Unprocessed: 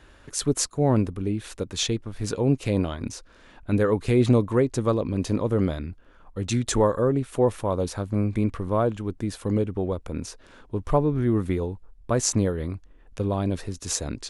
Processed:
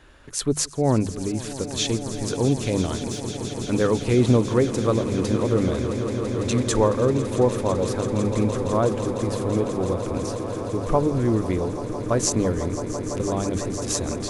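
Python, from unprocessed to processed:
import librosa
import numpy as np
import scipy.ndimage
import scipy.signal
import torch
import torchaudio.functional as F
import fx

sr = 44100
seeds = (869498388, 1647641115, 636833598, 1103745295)

p1 = fx.hum_notches(x, sr, base_hz=50, count=4)
p2 = fx.backlash(p1, sr, play_db=-48.5, at=(2.97, 3.89))
p3 = p2 + fx.echo_swell(p2, sr, ms=167, loudest=8, wet_db=-15, dry=0)
y = p3 * 10.0 ** (1.0 / 20.0)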